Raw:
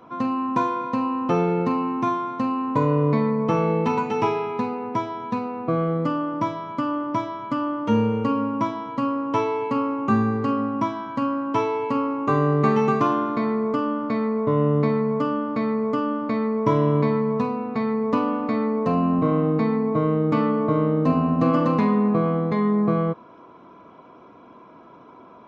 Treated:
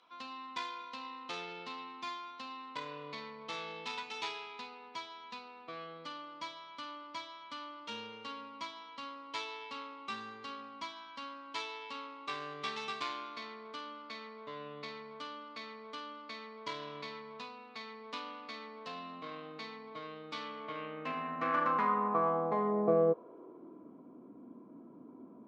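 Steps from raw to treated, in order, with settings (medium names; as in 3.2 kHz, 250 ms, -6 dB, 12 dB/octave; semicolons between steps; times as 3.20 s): tracing distortion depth 0.093 ms; band-pass sweep 3.9 kHz -> 250 Hz, 20.41–24.00 s; trim +1 dB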